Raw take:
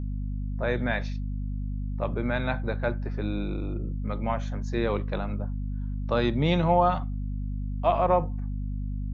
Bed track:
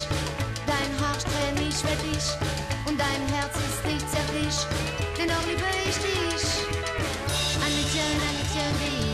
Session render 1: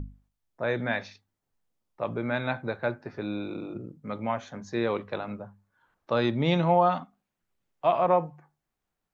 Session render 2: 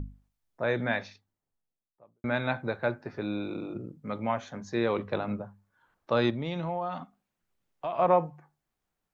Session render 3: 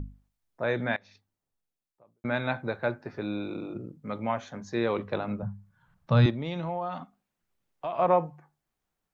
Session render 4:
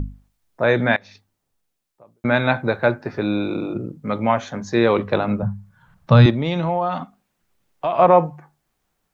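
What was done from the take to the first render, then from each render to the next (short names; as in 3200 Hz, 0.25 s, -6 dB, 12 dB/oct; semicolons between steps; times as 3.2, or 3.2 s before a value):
notches 50/100/150/200/250 Hz
0.85–2.24 studio fade out; 4.97–5.42 low shelf 460 Hz +5.5 dB; 6.3–7.99 compressor 3:1, threshold -32 dBFS
0.96–2.25 compressor 8:1, threshold -52 dBFS; 5.42–6.26 resonant low shelf 230 Hz +12 dB, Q 3
gain +11 dB; limiter -3 dBFS, peak gain reduction 2.5 dB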